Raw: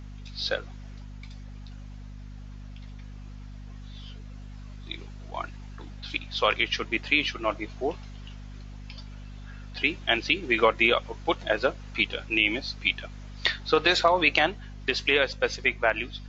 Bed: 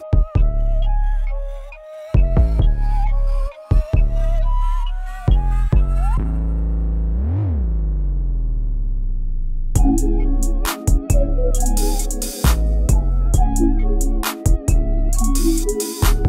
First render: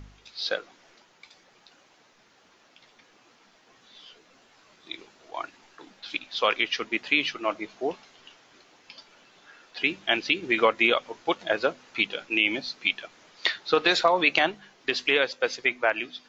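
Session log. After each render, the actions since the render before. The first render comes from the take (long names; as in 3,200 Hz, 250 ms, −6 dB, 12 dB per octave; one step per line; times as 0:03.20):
hum removal 50 Hz, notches 5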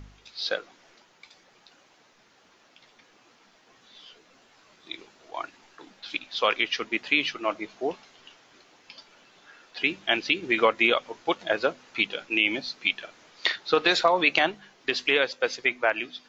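0:12.94–0:13.56: double-tracking delay 46 ms −10.5 dB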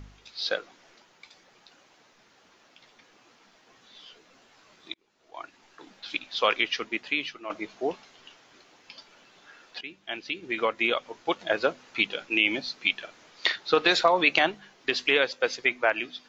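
0:04.94–0:05.93: fade in
0:06.60–0:07.50: fade out, to −11 dB
0:09.81–0:11.64: fade in, from −17 dB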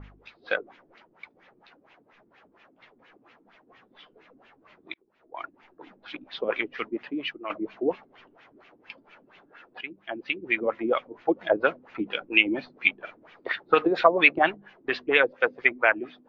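auto-filter low-pass sine 4.3 Hz 280–2,700 Hz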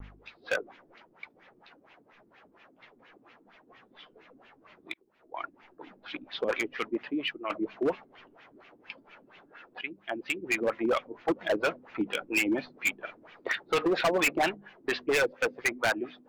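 gain into a clipping stage and back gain 21.5 dB
pitch vibrato 0.31 Hz 7.4 cents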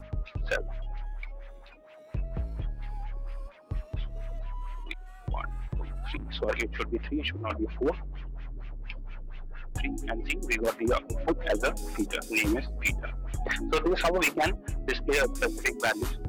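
mix in bed −18.5 dB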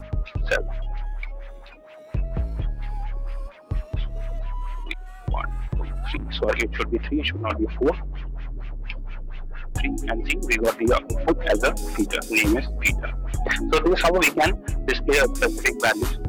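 level +7 dB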